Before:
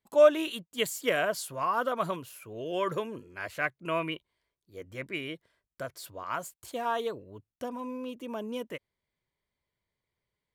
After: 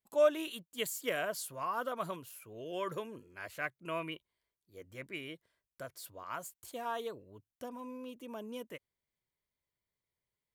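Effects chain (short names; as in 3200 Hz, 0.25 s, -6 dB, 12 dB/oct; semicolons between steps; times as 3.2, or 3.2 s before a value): high shelf 8100 Hz +8 dB; gain -7.5 dB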